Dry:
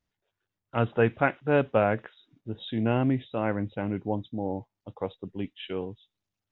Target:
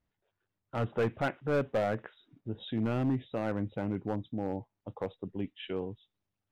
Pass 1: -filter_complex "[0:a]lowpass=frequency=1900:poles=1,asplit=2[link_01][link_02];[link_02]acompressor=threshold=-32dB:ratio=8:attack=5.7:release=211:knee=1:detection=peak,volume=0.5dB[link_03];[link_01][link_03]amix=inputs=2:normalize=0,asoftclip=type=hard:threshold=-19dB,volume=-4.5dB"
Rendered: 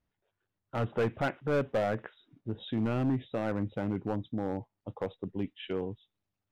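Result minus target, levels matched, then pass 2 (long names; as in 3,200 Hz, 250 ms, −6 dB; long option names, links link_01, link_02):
downward compressor: peak gain reduction −6 dB
-filter_complex "[0:a]lowpass=frequency=1900:poles=1,asplit=2[link_01][link_02];[link_02]acompressor=threshold=-39dB:ratio=8:attack=5.7:release=211:knee=1:detection=peak,volume=0.5dB[link_03];[link_01][link_03]amix=inputs=2:normalize=0,asoftclip=type=hard:threshold=-19dB,volume=-4.5dB"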